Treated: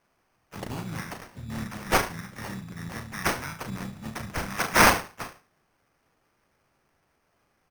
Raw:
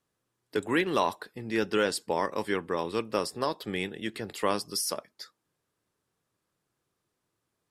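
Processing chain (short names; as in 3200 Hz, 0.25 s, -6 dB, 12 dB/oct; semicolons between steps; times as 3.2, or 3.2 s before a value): high shelf 5300 Hz +4.5 dB; in parallel at +3 dB: limiter -20 dBFS, peak gain reduction 8.5 dB; on the sum: elliptic band-stop 180–6200 Hz, stop band 70 dB; tilt shelf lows -4.5 dB; on a send: flutter echo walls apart 6.2 m, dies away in 0.37 s; on the sum: sample-and-hold 12×; harmoniser -7 st -5 dB, +3 st -12 dB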